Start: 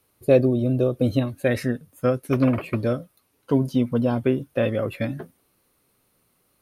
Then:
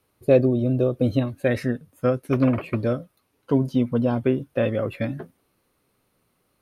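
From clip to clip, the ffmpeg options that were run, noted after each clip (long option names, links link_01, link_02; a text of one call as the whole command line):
ffmpeg -i in.wav -af "highshelf=frequency=5500:gain=-8" out.wav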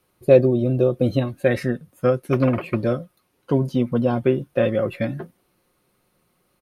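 ffmpeg -i in.wav -af "aecho=1:1:5.6:0.36,volume=2dB" out.wav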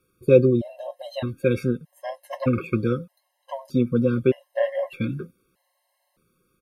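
ffmpeg -i in.wav -af "afftfilt=real='re*gt(sin(2*PI*0.81*pts/sr)*(1-2*mod(floor(b*sr/1024/540),2)),0)':imag='im*gt(sin(2*PI*0.81*pts/sr)*(1-2*mod(floor(b*sr/1024/540),2)),0)':win_size=1024:overlap=0.75" out.wav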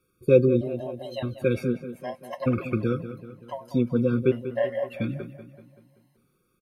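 ffmpeg -i in.wav -filter_complex "[0:a]asplit=2[link_01][link_02];[link_02]adelay=191,lowpass=frequency=3600:poles=1,volume=-12dB,asplit=2[link_03][link_04];[link_04]adelay=191,lowpass=frequency=3600:poles=1,volume=0.53,asplit=2[link_05][link_06];[link_06]adelay=191,lowpass=frequency=3600:poles=1,volume=0.53,asplit=2[link_07][link_08];[link_08]adelay=191,lowpass=frequency=3600:poles=1,volume=0.53,asplit=2[link_09][link_10];[link_10]adelay=191,lowpass=frequency=3600:poles=1,volume=0.53,asplit=2[link_11][link_12];[link_12]adelay=191,lowpass=frequency=3600:poles=1,volume=0.53[link_13];[link_01][link_03][link_05][link_07][link_09][link_11][link_13]amix=inputs=7:normalize=0,volume=-2.5dB" out.wav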